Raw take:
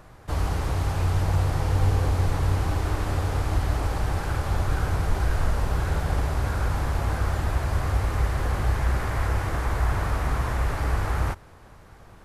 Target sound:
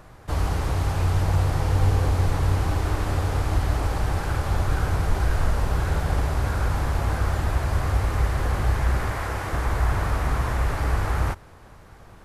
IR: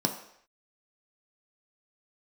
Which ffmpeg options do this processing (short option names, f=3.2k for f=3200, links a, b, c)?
-filter_complex "[0:a]asettb=1/sr,asplit=3[a][b][c];[a]atrim=end=9.124[d];[b]atrim=start=9.12:end=9.53,asetpts=PTS-STARTPTS,afade=t=in:d=0.004:c=qsin,afade=t=out:st=0.406:d=0.004:c=qsin,lowshelf=f=150:g=-9[e];[c]atrim=start=9.526[f];[d][e]acrossfade=d=0.004:c1=hsin:c2=qsin[g];[g][f]acrossfade=d=0.004:c1=qsin:c2=hsin,volume=1.5dB"